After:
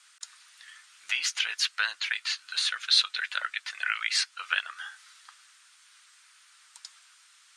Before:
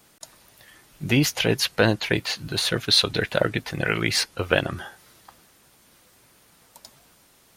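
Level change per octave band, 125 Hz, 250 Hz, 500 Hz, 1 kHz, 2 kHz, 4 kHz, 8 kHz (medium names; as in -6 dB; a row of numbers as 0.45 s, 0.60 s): under -40 dB, under -40 dB, under -30 dB, -6.0 dB, -3.0 dB, -3.0 dB, -4.0 dB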